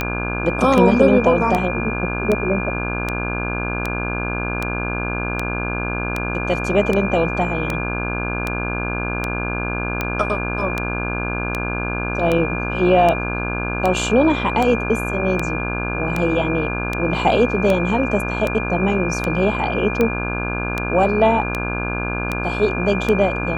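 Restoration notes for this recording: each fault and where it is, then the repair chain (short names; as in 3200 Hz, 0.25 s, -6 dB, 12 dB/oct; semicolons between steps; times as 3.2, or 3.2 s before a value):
buzz 60 Hz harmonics 28 -25 dBFS
tick 78 rpm -7 dBFS
tone 2400 Hz -26 dBFS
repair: de-click; notch 2400 Hz, Q 30; de-hum 60 Hz, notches 28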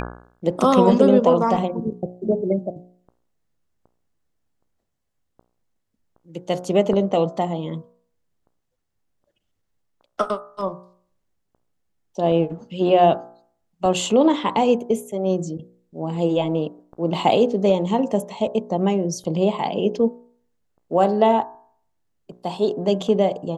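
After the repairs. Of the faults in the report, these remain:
none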